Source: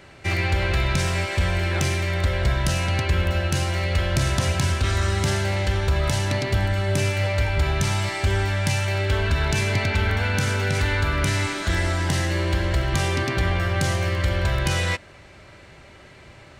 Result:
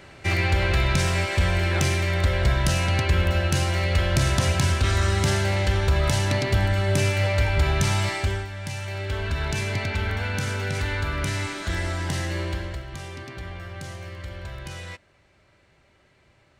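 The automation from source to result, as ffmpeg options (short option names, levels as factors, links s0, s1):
-af "volume=2.51,afade=t=out:st=8.1:d=0.38:silence=0.237137,afade=t=in:st=8.48:d=0.97:silence=0.421697,afade=t=out:st=12.41:d=0.43:silence=0.334965"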